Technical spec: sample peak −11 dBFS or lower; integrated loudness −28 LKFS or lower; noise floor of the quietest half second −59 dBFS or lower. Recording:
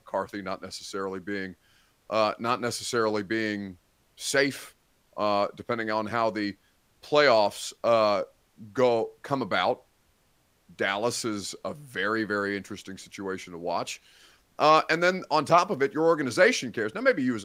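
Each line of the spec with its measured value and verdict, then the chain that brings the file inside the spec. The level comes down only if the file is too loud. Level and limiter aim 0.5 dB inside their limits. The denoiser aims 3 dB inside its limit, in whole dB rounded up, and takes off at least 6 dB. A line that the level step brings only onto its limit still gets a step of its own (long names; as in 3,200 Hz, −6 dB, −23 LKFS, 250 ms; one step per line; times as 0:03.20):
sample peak −8.0 dBFS: out of spec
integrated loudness −26.5 LKFS: out of spec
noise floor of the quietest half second −67 dBFS: in spec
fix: level −2 dB
brickwall limiter −11.5 dBFS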